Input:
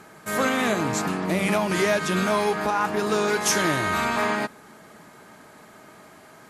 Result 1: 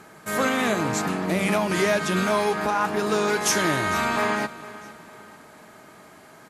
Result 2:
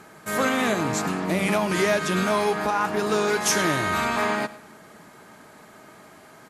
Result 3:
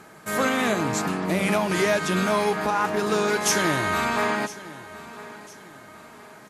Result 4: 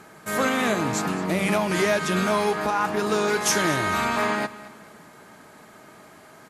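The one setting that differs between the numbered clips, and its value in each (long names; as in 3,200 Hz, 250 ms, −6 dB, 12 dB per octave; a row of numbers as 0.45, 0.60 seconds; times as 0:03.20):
repeating echo, delay time: 451, 104, 1,006, 217 milliseconds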